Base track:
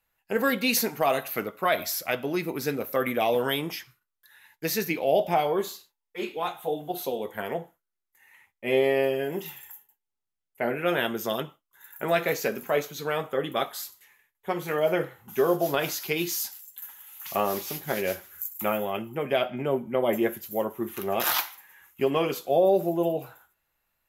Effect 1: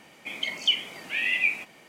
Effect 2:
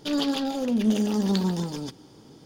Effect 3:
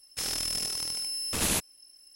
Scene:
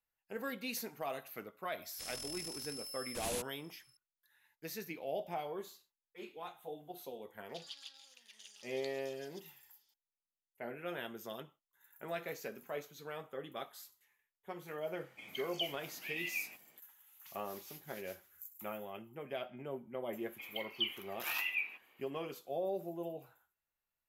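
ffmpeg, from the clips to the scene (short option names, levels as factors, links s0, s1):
-filter_complex "[1:a]asplit=2[s0][s1];[0:a]volume=0.15[s2];[2:a]asuperpass=centerf=5700:order=4:qfactor=0.63[s3];[s1]highpass=360,equalizer=f=630:t=q:w=4:g=-6,equalizer=f=1100:t=q:w=4:g=4,equalizer=f=2700:t=q:w=4:g=5,lowpass=f=4000:w=0.5412,lowpass=f=4000:w=1.3066[s4];[3:a]atrim=end=2.15,asetpts=PTS-STARTPTS,volume=0.211,afade=t=in:d=0.004:c=hsin,afade=t=out:st=2.146:d=0.004:c=hsin,adelay=1820[s5];[s3]atrim=end=2.45,asetpts=PTS-STARTPTS,volume=0.158,afade=t=in:d=0.004:c=hsin,afade=t=out:st=2.446:d=0.004:c=hsin,adelay=7490[s6];[s0]atrim=end=1.88,asetpts=PTS-STARTPTS,volume=0.168,afade=t=in:d=0.004:c=hsin,afade=t=out:st=1.876:d=0.004:c=hsin,adelay=657972S[s7];[s4]atrim=end=1.88,asetpts=PTS-STARTPTS,volume=0.178,afade=t=in:d=0.004:c=hsin,afade=t=out:st=1.876:d=0.004:c=hsin,adelay=20130[s8];[s2][s5][s6][s7][s8]amix=inputs=5:normalize=0"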